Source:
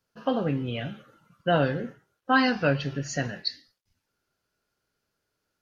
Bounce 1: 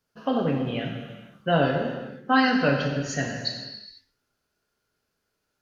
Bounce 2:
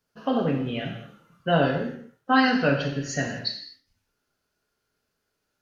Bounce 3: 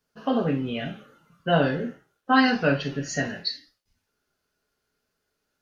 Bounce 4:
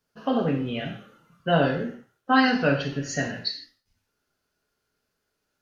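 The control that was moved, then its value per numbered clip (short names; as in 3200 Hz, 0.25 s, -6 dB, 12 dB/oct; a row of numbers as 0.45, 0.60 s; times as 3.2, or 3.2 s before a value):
non-linear reverb, gate: 0.53, 0.27, 0.1, 0.18 s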